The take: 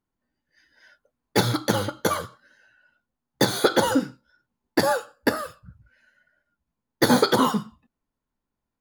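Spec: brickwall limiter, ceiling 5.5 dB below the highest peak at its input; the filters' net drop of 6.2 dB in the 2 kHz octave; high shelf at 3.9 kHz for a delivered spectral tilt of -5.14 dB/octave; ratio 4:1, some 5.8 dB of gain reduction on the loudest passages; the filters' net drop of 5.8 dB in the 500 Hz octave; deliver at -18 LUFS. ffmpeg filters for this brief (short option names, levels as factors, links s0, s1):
-af "equalizer=f=500:t=o:g=-6.5,equalizer=f=2000:t=o:g=-6.5,highshelf=f=3900:g=-8,acompressor=threshold=0.0631:ratio=4,volume=5.62,alimiter=limit=0.668:level=0:latency=1"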